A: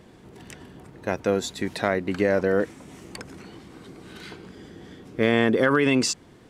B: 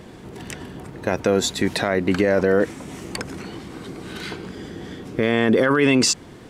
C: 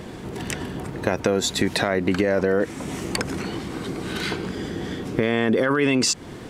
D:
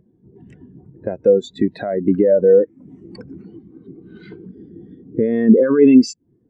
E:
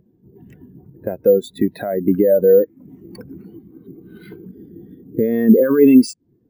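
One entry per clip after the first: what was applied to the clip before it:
limiter -17 dBFS, peak gain reduction 9 dB; gain +9 dB
compressor 3:1, threshold -24 dBFS, peak gain reduction 8.5 dB; gain +5 dB
spectral expander 2.5:1; gain +3 dB
careless resampling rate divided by 3×, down none, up hold

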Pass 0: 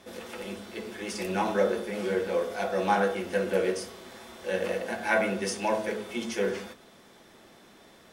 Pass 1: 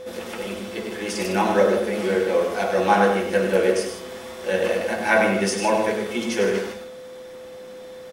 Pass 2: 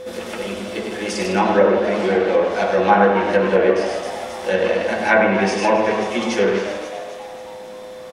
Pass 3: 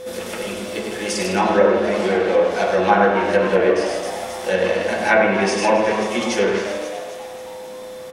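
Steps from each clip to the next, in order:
whine 510 Hz -41 dBFS; on a send: loudspeakers at several distances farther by 34 m -7 dB, 53 m -10 dB; on the sum: gain +6.5 dB
frequency-shifting echo 0.268 s, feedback 53%, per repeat +110 Hz, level -11 dB; treble ducked by the level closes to 2500 Hz, closed at -14 dBFS; gain +3.5 dB
high shelf 6700 Hz +10 dB; on a send at -9 dB: reverb, pre-delay 33 ms; on the sum: gain -1 dB

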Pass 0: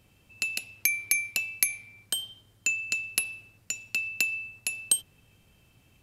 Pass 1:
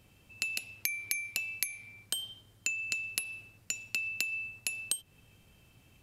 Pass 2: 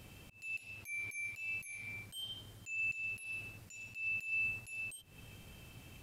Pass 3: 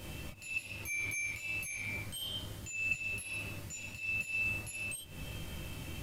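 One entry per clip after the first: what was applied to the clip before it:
compressor 6:1, threshold -30 dBFS, peak gain reduction 11.5 dB
wavefolder -17.5 dBFS; auto swell 0.31 s; gain +7 dB
reverb, pre-delay 3 ms, DRR -2 dB; gain +6.5 dB

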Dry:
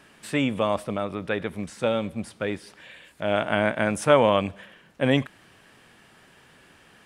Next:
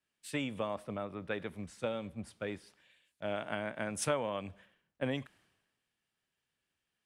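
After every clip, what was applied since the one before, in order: compressor 8:1, threshold -24 dBFS, peak gain reduction 12.5 dB; three-band expander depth 100%; gain -8 dB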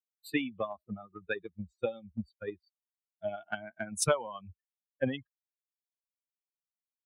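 per-bin expansion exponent 3; transient shaper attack +6 dB, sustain -1 dB; gain +5 dB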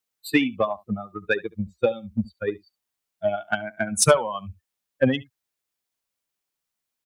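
echo 70 ms -21.5 dB; in parallel at -7 dB: soft clip -27.5 dBFS, distortion -9 dB; on the sum: gain +9 dB

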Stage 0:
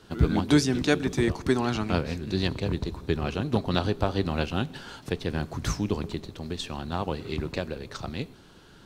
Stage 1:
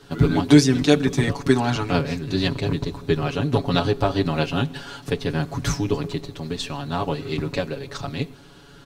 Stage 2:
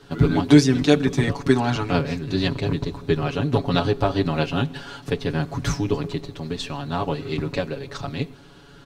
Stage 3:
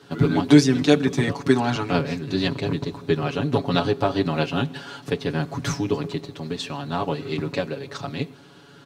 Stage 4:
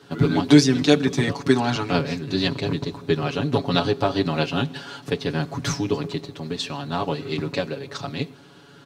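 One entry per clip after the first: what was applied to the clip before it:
comb 7.1 ms, depth 87%; gain +3 dB
high shelf 6500 Hz -6 dB
HPF 120 Hz 12 dB/oct
dynamic EQ 4600 Hz, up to +4 dB, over -43 dBFS, Q 1.1

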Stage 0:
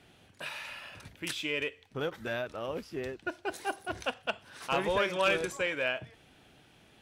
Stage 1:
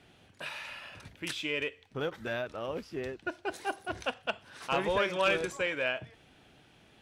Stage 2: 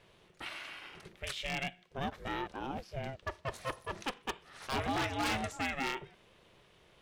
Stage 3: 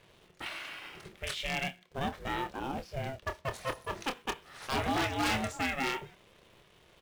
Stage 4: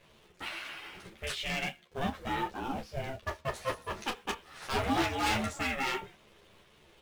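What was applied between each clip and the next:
high shelf 11000 Hz -8.5 dB
ring modulator 270 Hz; wavefolder -25.5 dBFS
doubler 27 ms -9 dB; in parallel at -10 dB: companded quantiser 4-bit
ensemble effect; gain +3.5 dB

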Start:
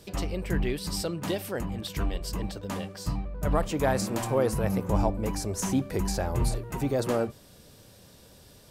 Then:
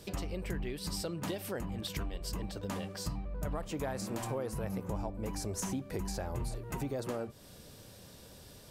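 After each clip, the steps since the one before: compressor, threshold -34 dBFS, peak gain reduction 13.5 dB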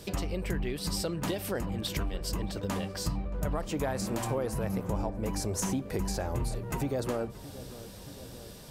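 darkening echo 0.625 s, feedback 69%, low-pass 1500 Hz, level -16 dB; gain +5 dB

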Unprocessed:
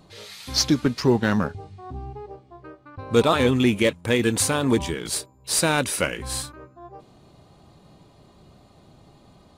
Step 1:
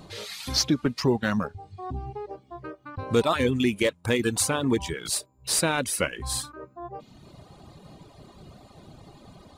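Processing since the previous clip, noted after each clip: reverb removal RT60 0.93 s; compressor 1.5:1, threshold -42 dBFS, peak gain reduction 10.5 dB; gain +6 dB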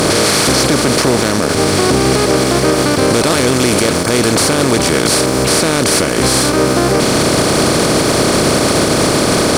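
per-bin compression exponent 0.2; sample leveller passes 1; limiter -9 dBFS, peak gain reduction 11 dB; gain +6 dB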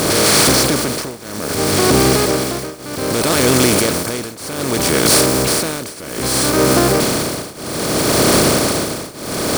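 switching spikes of -12.5 dBFS; tremolo triangle 0.63 Hz, depth 95%

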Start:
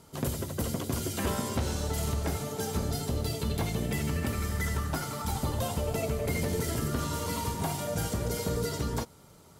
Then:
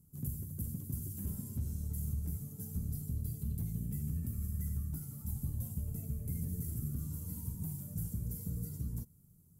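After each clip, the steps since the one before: EQ curve 170 Hz 0 dB, 640 Hz -29 dB, 3800 Hz -28 dB, 13000 Hz +3 dB; gain -5 dB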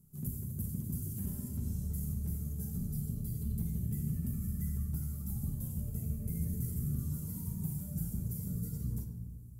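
shoebox room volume 1300 m³, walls mixed, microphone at 1.2 m

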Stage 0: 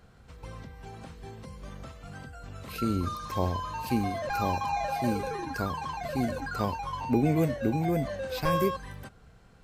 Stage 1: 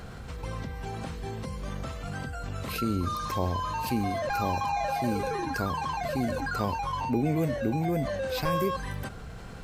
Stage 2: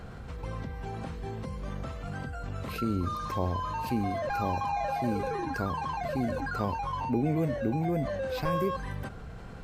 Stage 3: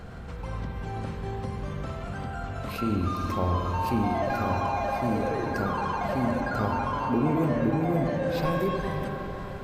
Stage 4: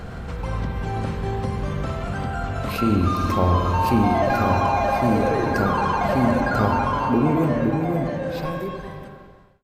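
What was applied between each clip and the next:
fast leveller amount 50%; gain -3 dB
high shelf 3000 Hz -8.5 dB; gain -1 dB
diffused feedback echo 0.513 s, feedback 62%, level -13.5 dB; spring tank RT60 3.1 s, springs 47/56 ms, chirp 40 ms, DRR 1.5 dB; gain +1.5 dB
ending faded out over 3.01 s; gain +7.5 dB

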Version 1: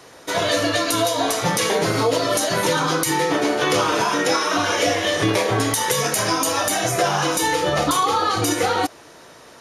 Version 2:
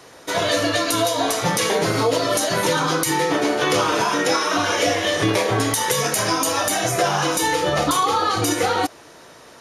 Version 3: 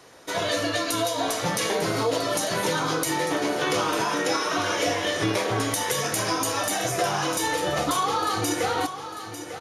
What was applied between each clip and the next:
nothing audible
feedback echo 0.898 s, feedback 43%, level -11.5 dB; on a send at -20 dB: reverb RT60 0.65 s, pre-delay 3 ms; on the sum: gain -5.5 dB

